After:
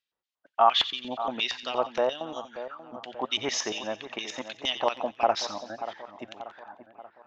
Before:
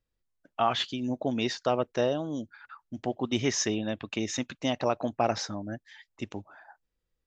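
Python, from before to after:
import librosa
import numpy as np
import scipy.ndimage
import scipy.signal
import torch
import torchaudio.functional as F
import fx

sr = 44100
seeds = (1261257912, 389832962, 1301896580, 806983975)

y = fx.hum_notches(x, sr, base_hz=60, count=2)
y = fx.filter_lfo_bandpass(y, sr, shape='square', hz=4.3, low_hz=930.0, high_hz=3300.0, q=1.8)
y = fx.echo_split(y, sr, split_hz=1900.0, low_ms=584, high_ms=89, feedback_pct=52, wet_db=-12)
y = y * librosa.db_to_amplitude(8.5)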